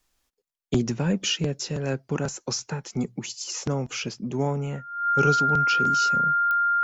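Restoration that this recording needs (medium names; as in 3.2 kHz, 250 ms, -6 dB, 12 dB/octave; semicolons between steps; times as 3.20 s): de-click; band-stop 1.4 kHz, Q 30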